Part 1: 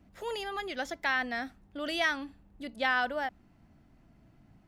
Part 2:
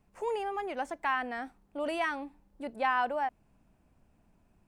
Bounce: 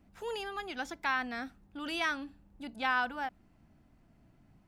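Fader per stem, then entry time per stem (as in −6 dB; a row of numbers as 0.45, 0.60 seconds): −3.5, −6.5 decibels; 0.00, 0.00 seconds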